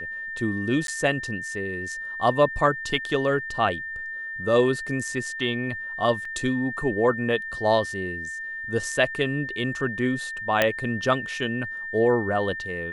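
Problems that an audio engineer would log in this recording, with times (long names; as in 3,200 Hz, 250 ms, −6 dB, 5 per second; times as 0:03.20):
whistle 1,800 Hz −31 dBFS
0:00.87–0:00.88: drop-out
0:06.25: drop-out 3.5 ms
0:10.62: click −5 dBFS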